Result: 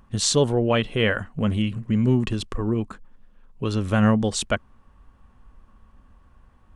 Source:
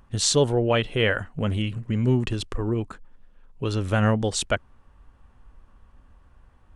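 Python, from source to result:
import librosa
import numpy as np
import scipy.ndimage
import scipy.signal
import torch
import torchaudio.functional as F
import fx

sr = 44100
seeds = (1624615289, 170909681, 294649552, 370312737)

y = fx.small_body(x, sr, hz=(210.0, 1100.0), ring_ms=45, db=6)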